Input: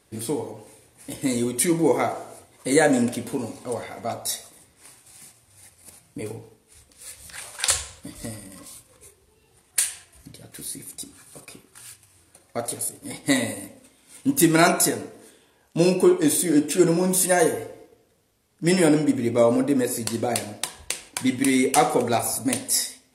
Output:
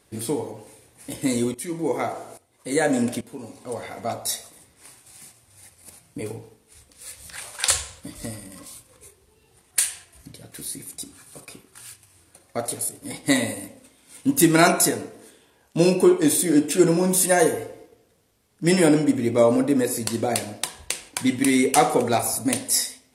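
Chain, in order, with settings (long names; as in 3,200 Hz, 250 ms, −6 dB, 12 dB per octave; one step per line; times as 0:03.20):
0:01.54–0:03.84: shaped tremolo saw up 1.2 Hz, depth 85%
level +1 dB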